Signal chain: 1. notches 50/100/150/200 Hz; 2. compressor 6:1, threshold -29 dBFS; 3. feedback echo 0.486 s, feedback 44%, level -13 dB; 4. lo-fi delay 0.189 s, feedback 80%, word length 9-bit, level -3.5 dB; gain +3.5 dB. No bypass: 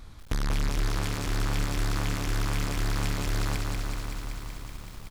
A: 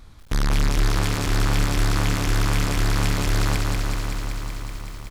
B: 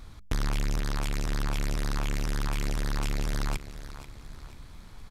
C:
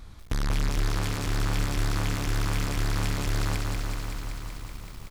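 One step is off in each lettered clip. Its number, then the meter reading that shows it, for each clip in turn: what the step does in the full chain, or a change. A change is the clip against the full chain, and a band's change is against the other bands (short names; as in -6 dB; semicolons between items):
2, mean gain reduction 4.5 dB; 4, momentary loudness spread change +7 LU; 1, loudness change +1.0 LU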